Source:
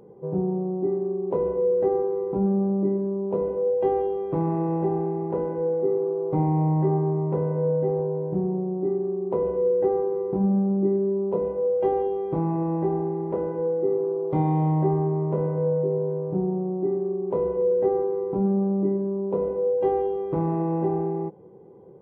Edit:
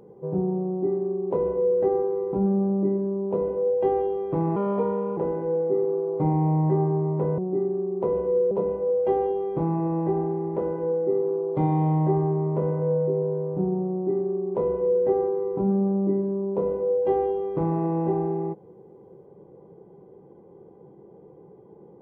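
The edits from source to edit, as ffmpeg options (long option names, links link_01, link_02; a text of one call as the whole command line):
ffmpeg -i in.wav -filter_complex "[0:a]asplit=5[link_01][link_02][link_03][link_04][link_05];[link_01]atrim=end=4.564[link_06];[link_02]atrim=start=4.56:end=5.3,asetpts=PTS-STARTPTS,asetrate=53361,aresample=44100,atrim=end_sample=26970,asetpts=PTS-STARTPTS[link_07];[link_03]atrim=start=5.296:end=7.512[link_08];[link_04]atrim=start=8.678:end=9.812[link_09];[link_05]atrim=start=11.268[link_10];[link_06][link_07]acrossfade=duration=0.004:curve1=hsin:curve2=hsin[link_11];[link_11][link_08]acrossfade=duration=0.004:curve1=hsin:curve2=hsin[link_12];[link_12][link_09]acrossfade=duration=0.004:curve1=hsin:curve2=hsin[link_13];[link_13][link_10]acrossfade=duration=0.004:curve1=hsin:curve2=hsin" out.wav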